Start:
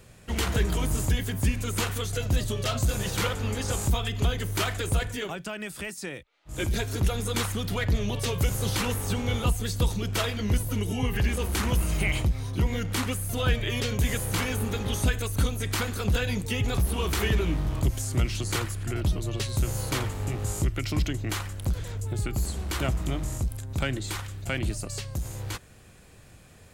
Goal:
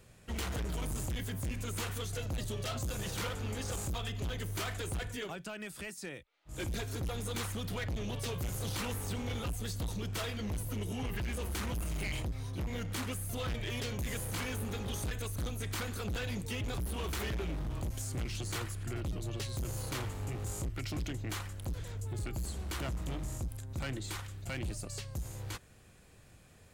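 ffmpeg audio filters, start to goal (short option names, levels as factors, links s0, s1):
-af "asoftclip=type=hard:threshold=0.0501,volume=0.447"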